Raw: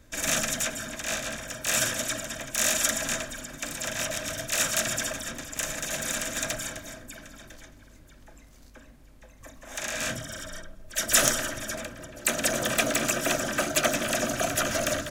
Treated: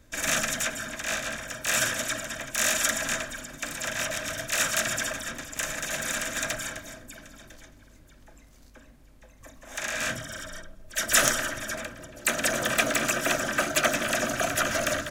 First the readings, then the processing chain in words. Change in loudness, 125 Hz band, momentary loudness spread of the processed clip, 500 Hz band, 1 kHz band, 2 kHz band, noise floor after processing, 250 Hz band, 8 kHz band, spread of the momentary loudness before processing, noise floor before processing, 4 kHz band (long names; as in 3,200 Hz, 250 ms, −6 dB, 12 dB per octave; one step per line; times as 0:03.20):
0.0 dB, −1.5 dB, 12 LU, −0.5 dB, +2.0 dB, +3.0 dB, −54 dBFS, −1.5 dB, −1.0 dB, 12 LU, −52 dBFS, 0.0 dB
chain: dynamic equaliser 1,600 Hz, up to +5 dB, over −44 dBFS, Q 0.84
level −1.5 dB